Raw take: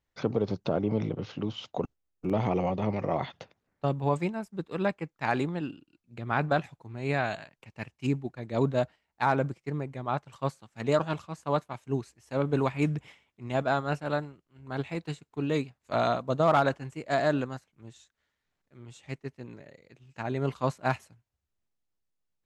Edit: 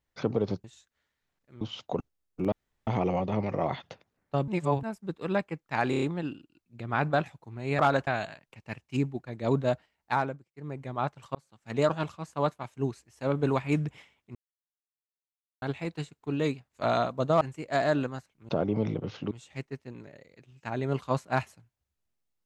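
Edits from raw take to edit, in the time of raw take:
0:00.64–0:01.46: swap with 0:17.87–0:18.84
0:02.37: splice in room tone 0.35 s
0:03.98–0:04.33: reverse
0:05.40: stutter 0.03 s, 5 plays
0:09.22–0:09.91: duck −20 dB, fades 0.26 s
0:10.45–0:10.85: fade in
0:13.45–0:14.72: silence
0:16.51–0:16.79: move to 0:07.17

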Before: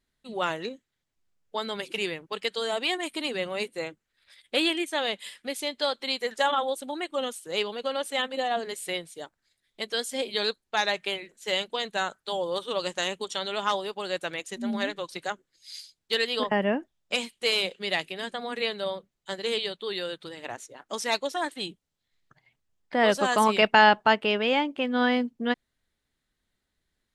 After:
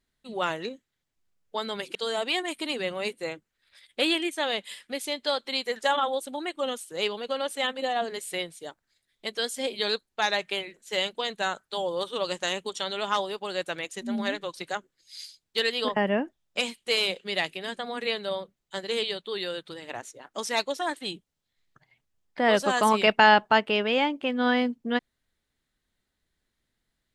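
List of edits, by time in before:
0:01.95–0:02.50: remove

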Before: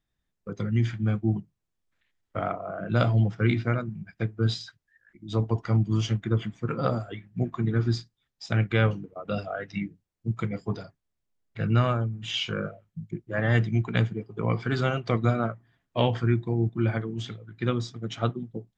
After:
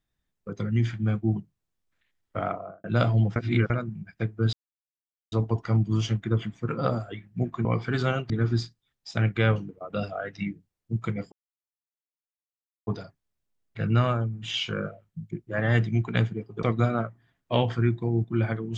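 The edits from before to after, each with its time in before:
0:02.55–0:02.84: fade out and dull
0:03.36–0:03.70: reverse
0:04.53–0:05.32: silence
0:10.67: splice in silence 1.55 s
0:14.43–0:15.08: move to 0:07.65

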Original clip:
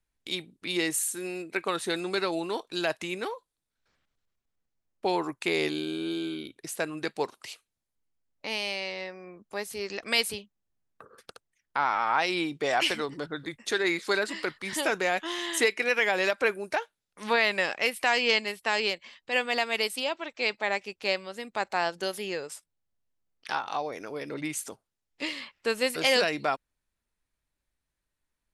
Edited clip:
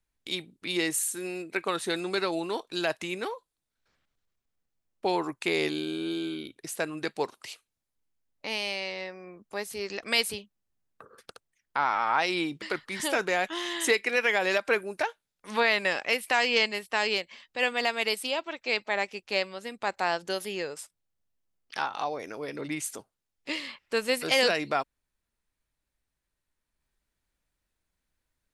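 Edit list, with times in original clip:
0:12.62–0:14.35: remove

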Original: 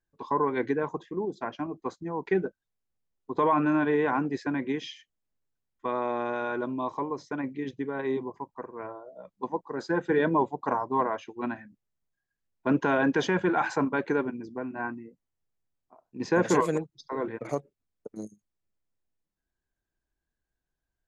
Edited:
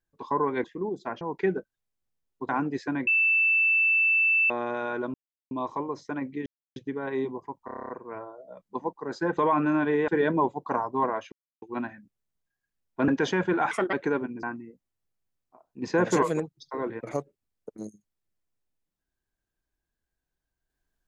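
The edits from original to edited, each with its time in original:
0:00.64–0:01.00: remove
0:01.57–0:02.09: remove
0:03.37–0:04.08: move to 0:10.05
0:04.66–0:06.09: beep over 2,650 Hz −19 dBFS
0:06.73: splice in silence 0.37 s
0:07.68: splice in silence 0.30 s
0:08.57: stutter 0.03 s, 9 plays
0:11.29: splice in silence 0.30 s
0:12.75–0:13.04: remove
0:13.67–0:13.97: play speed 136%
0:14.47–0:14.81: remove

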